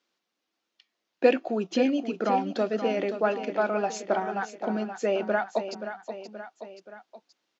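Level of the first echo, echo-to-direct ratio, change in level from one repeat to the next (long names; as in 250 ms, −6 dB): −10.0 dB, −8.5 dB, −5.0 dB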